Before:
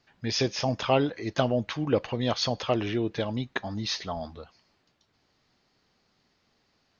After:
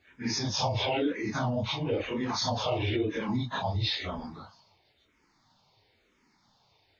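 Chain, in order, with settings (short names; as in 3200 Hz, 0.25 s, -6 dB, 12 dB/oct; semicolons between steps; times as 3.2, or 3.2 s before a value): phase scrambler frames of 0.1 s; bell 100 Hz +5.5 dB 0.27 oct; limiter -23 dBFS, peak gain reduction 10.5 dB; small resonant body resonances 920/2200/3600 Hz, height 8 dB, ringing for 20 ms; endless phaser -1 Hz; gain +4 dB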